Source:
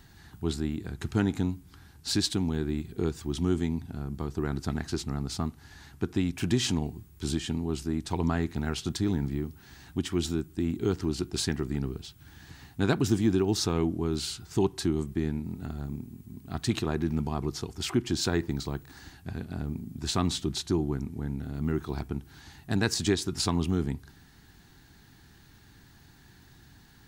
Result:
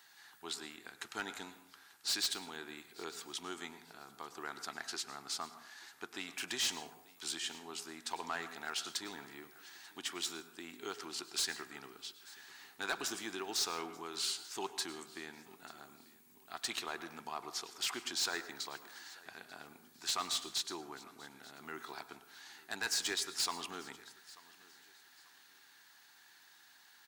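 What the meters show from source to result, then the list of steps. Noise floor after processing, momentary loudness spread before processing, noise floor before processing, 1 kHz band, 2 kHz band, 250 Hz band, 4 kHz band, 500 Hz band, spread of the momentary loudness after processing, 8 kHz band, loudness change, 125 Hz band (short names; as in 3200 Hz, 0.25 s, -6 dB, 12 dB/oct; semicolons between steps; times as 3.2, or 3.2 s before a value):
-63 dBFS, 12 LU, -56 dBFS, -4.5 dB, -2.0 dB, -22.0 dB, -2.5 dB, -15.5 dB, 18 LU, -2.0 dB, -9.0 dB, -33.5 dB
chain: HPF 940 Hz 12 dB/oct; overloaded stage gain 28 dB; on a send: feedback echo 0.889 s, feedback 31%, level -21.5 dB; on the sum: plate-style reverb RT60 0.68 s, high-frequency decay 0.5×, pre-delay 90 ms, DRR 12 dB; gain -1 dB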